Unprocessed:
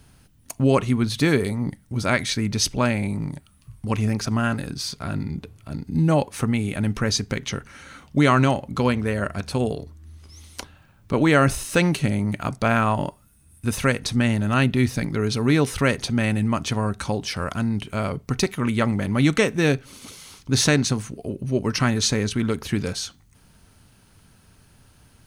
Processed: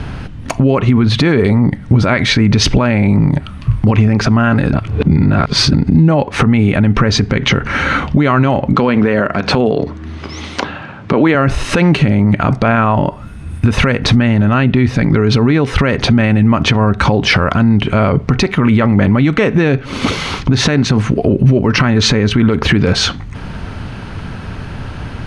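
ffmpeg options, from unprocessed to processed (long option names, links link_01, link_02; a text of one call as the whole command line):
ffmpeg -i in.wav -filter_complex "[0:a]asettb=1/sr,asplit=3[link_01][link_02][link_03];[link_01]atrim=end=8.734[link_04];[link_02]atrim=start=8.73:end=11.35,asetpts=PTS-STARTPTS,afade=type=in:duration=0.004:curve=qsin,afade=type=out:start_time=2.616:duration=0.004:curve=qsin,highpass=180,lowpass=8000[link_05];[link_03]atrim=start=11.346[link_06];[link_04][link_05]acrossfade=duration=0.004:curve1=hsin:curve2=qsin[link_07];[link_07][link_06]acrossfade=duration=0.004:curve1=qsin:curve2=hsin,asplit=3[link_08][link_09][link_10];[link_08]atrim=end=4.732[link_11];[link_09]atrim=start=4.728:end=5.732,asetpts=PTS-STARTPTS,areverse[link_12];[link_10]atrim=start=5.728[link_13];[link_11][link_12]acrossfade=duration=0.004:curve1=hsin:curve2=hsin[link_14];[link_14][link_13]acrossfade=duration=0.004:curve1=hsin:curve2=hsin,lowpass=2600,acompressor=threshold=-31dB:ratio=12,alimiter=level_in=30.5dB:limit=-1dB:release=50:level=0:latency=1,volume=-1dB" out.wav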